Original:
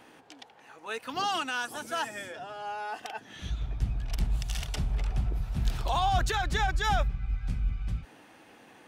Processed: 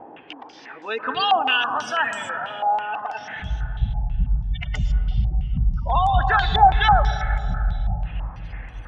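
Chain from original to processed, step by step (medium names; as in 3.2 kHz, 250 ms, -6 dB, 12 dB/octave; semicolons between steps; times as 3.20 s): spectral gate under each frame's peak -20 dB strong; peaking EQ 360 Hz +5 dB 0.72 oct, from 1.11 s -9 dB; reverberation RT60 3.0 s, pre-delay 108 ms, DRR 7 dB; step-sequenced low-pass 6.1 Hz 780–7400 Hz; trim +7 dB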